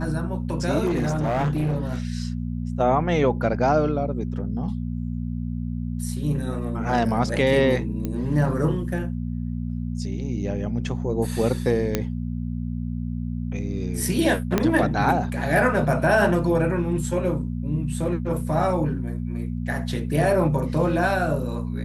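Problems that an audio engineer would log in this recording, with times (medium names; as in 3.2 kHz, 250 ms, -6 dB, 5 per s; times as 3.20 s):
hum 60 Hz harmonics 4 -28 dBFS
0.85–1.95 s: clipped -19.5 dBFS
8.05 s: pop -15 dBFS
11.95 s: pop -7 dBFS
14.58 s: pop -6 dBFS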